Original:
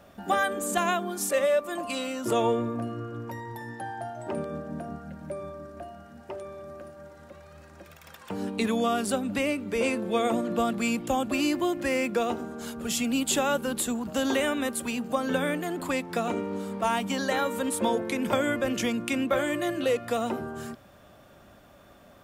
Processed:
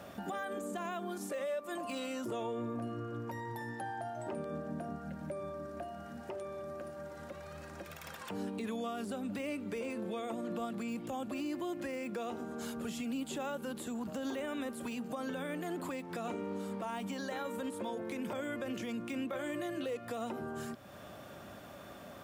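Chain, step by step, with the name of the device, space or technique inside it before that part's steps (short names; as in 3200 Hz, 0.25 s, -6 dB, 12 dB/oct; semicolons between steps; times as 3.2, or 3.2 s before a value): podcast mastering chain (HPF 88 Hz; de-esser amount 95%; compressor 2:1, threshold -49 dBFS, peak gain reduction 15 dB; limiter -35 dBFS, peak gain reduction 7 dB; gain +5 dB; MP3 128 kbps 48000 Hz)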